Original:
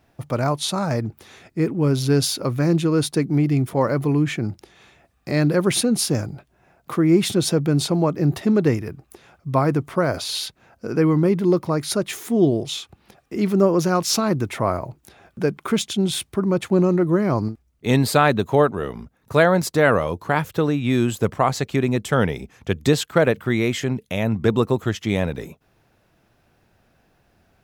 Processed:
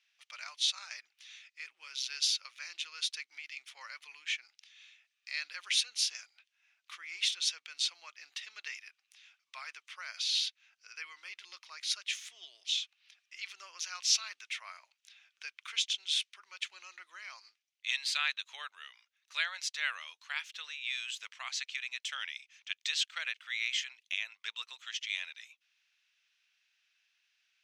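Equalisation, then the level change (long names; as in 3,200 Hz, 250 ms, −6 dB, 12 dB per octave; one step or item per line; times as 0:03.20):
four-pole ladder high-pass 2,200 Hz, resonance 35%
high-frequency loss of the air 99 metres
parametric band 6,000 Hz +5.5 dB 0.27 octaves
+4.0 dB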